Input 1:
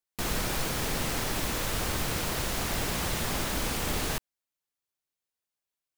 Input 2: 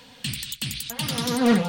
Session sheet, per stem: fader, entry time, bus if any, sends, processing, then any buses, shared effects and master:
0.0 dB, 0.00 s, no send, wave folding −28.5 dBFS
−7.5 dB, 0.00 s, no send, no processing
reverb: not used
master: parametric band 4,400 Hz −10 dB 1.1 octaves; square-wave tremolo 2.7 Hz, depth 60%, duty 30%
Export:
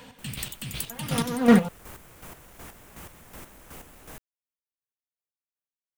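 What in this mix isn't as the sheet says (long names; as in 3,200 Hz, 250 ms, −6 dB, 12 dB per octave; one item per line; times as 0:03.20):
stem 1 0.0 dB → −8.0 dB
stem 2 −7.5 dB → +3.5 dB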